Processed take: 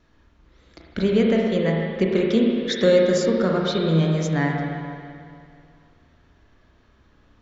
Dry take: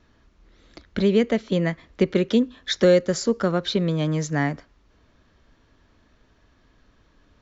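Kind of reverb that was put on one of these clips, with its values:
spring reverb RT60 2.3 s, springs 31/37/49 ms, chirp 45 ms, DRR −1.5 dB
level −2 dB

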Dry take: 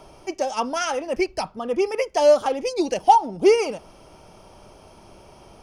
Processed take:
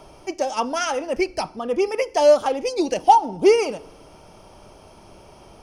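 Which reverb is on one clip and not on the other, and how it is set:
feedback delay network reverb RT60 0.93 s, low-frequency decay 1.5×, high-frequency decay 0.85×, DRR 19.5 dB
level +1 dB

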